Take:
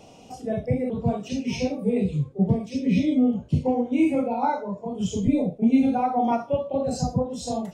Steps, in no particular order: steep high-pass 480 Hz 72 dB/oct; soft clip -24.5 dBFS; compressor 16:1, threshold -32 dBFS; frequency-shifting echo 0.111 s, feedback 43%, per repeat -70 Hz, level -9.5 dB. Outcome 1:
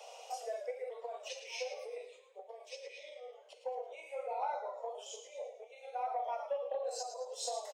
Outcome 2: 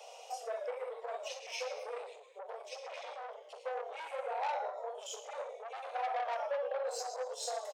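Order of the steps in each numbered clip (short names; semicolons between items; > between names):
compressor > frequency-shifting echo > steep high-pass > soft clip; frequency-shifting echo > soft clip > compressor > steep high-pass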